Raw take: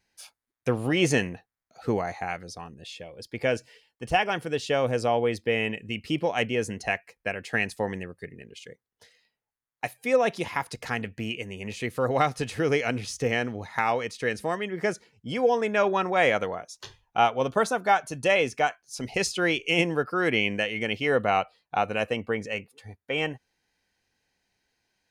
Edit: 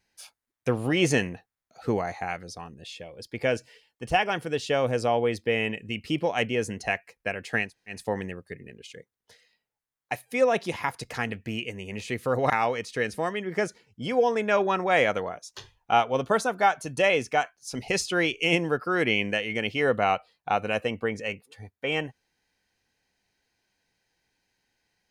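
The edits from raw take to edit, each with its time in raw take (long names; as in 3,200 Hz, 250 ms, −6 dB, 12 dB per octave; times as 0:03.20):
0:07.66: splice in room tone 0.28 s, crossfade 0.16 s
0:12.22–0:13.76: remove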